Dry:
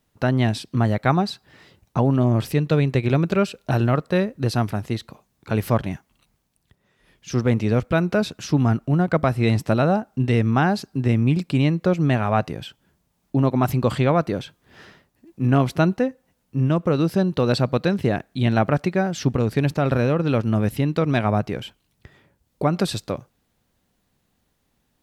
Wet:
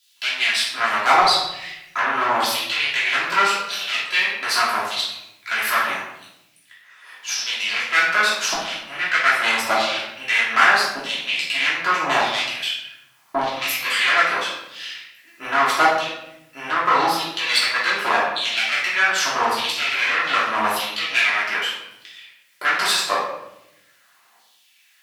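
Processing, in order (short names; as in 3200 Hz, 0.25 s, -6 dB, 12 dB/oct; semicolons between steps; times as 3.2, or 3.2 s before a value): tube stage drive 20 dB, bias 0.65; LFO high-pass saw down 0.82 Hz 860–3900 Hz; in parallel at -1 dB: compressor, threshold -45 dBFS, peak gain reduction 21.5 dB; on the sum: shoebox room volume 260 m³, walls mixed, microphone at 3 m; gain +5 dB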